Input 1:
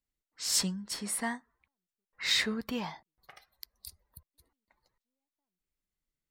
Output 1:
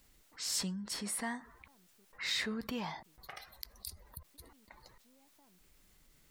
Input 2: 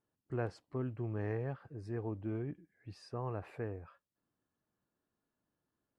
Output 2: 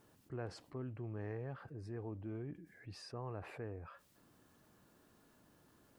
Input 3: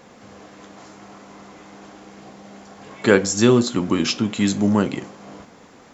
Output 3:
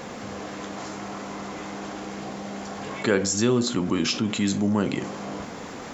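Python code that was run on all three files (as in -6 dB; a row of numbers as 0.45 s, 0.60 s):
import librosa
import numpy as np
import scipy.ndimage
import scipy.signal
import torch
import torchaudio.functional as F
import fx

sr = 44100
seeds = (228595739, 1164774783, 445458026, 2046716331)

y = fx.env_flatten(x, sr, amount_pct=50)
y = F.gain(torch.from_numpy(y), -8.0).numpy()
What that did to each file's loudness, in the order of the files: -7.0 LU, -6.0 LU, -8.0 LU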